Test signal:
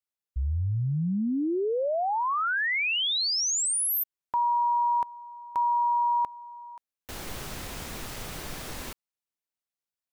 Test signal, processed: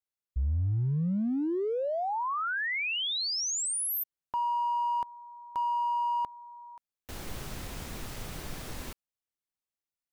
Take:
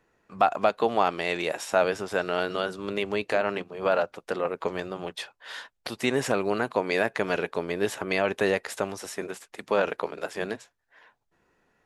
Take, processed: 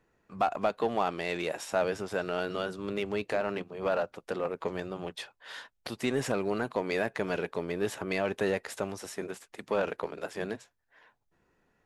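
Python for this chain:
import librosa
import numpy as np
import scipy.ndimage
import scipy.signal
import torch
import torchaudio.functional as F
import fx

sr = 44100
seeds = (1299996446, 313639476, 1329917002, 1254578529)

p1 = fx.low_shelf(x, sr, hz=290.0, db=5.5)
p2 = np.clip(10.0 ** (23.5 / 20.0) * p1, -1.0, 1.0) / 10.0 ** (23.5 / 20.0)
p3 = p1 + (p2 * librosa.db_to_amplitude(-5.0))
y = p3 * librosa.db_to_amplitude(-8.5)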